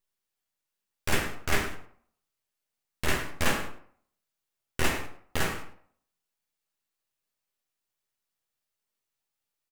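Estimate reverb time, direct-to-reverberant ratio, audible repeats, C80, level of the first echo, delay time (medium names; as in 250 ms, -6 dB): 0.60 s, 2.5 dB, 1, 11.5 dB, -16.0 dB, 106 ms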